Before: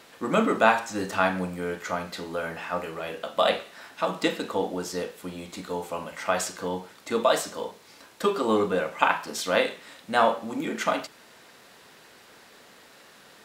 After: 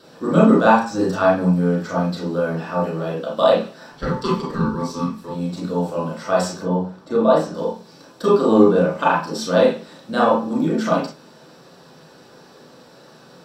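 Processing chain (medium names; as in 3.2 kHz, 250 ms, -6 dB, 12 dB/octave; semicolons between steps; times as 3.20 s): 3.92–5.31 s: ring modulator 700 Hz; 6.62–7.55 s: treble shelf 2.8 kHz -11.5 dB; reverberation RT60 0.20 s, pre-delay 29 ms, DRR -6 dB; trim -6 dB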